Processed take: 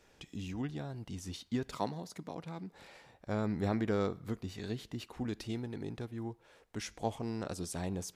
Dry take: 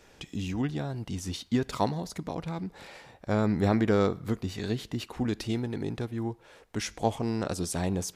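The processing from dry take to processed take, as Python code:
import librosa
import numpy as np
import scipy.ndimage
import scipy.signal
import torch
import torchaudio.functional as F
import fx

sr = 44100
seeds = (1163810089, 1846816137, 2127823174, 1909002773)

y = fx.highpass(x, sr, hz=130.0, slope=12, at=(1.75, 2.73))
y = y * 10.0 ** (-8.0 / 20.0)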